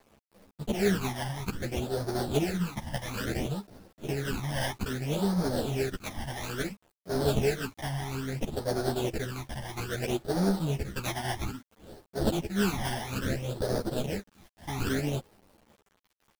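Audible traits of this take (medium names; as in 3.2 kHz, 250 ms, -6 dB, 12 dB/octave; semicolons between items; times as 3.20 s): aliases and images of a low sample rate 1.1 kHz, jitter 20%; phasing stages 12, 0.6 Hz, lowest notch 420–2700 Hz; a quantiser's noise floor 10-bit, dither none; a shimmering, thickened sound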